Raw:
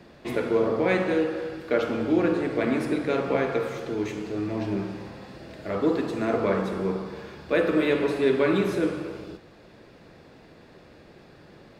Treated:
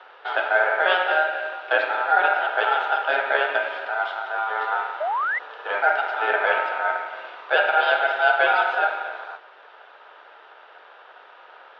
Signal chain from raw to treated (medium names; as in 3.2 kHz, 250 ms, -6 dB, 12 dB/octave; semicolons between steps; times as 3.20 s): ring modulator 1.1 kHz; painted sound rise, 5.00–5.39 s, 580–2100 Hz -30 dBFS; Chebyshev band-pass 410–3600 Hz, order 3; trim +6.5 dB